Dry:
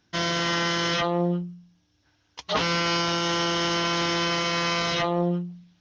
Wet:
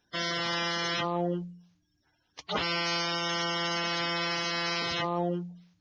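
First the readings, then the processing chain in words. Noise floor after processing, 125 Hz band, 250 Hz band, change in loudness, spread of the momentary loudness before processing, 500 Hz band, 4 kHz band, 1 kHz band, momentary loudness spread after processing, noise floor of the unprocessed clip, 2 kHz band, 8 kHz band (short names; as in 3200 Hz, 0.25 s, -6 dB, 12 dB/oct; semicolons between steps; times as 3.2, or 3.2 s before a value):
-74 dBFS, -8.0 dB, -7.5 dB, -5.5 dB, 6 LU, -6.0 dB, -4.5 dB, -5.5 dB, 7 LU, -68 dBFS, -4.5 dB, n/a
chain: bin magnitudes rounded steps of 30 dB; gain -5 dB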